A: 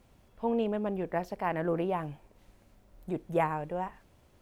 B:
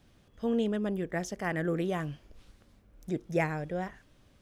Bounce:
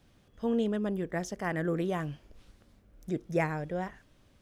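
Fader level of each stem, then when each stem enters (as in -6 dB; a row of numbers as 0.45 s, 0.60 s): -15.5 dB, -1.0 dB; 0.00 s, 0.00 s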